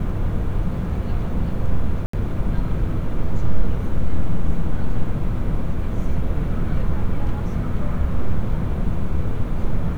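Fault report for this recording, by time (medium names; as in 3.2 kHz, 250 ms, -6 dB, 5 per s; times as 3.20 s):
2.06–2.13 s: dropout 74 ms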